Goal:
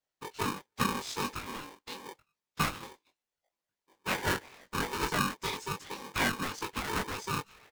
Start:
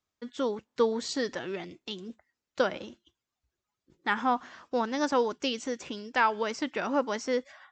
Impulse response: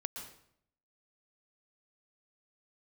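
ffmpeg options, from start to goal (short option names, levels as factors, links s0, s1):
-filter_complex "[0:a]afftfilt=real='hypot(re,im)*cos(2*PI*random(0))':imag='hypot(re,im)*sin(2*PI*random(1))':win_size=512:overlap=0.75,asplit=2[s0][s1];[s1]adelay=21,volume=0.708[s2];[s0][s2]amix=inputs=2:normalize=0,aeval=exprs='val(0)*sgn(sin(2*PI*670*n/s))':c=same"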